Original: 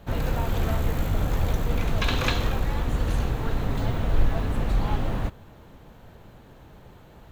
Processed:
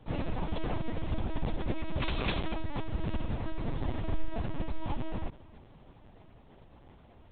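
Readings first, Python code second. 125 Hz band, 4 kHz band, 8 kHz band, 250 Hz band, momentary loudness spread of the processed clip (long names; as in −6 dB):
−10.0 dB, −8.5 dB, below −35 dB, −5.5 dB, 7 LU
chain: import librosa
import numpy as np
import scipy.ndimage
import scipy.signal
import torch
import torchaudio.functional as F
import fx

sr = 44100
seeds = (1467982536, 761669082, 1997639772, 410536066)

y = fx.peak_eq(x, sr, hz=1500.0, db=-6.0, octaves=0.43)
y = fx.echo_feedback(y, sr, ms=317, feedback_pct=42, wet_db=-22.5)
y = fx.lpc_vocoder(y, sr, seeds[0], excitation='pitch_kept', order=10)
y = y * librosa.db_to_amplitude(-7.0)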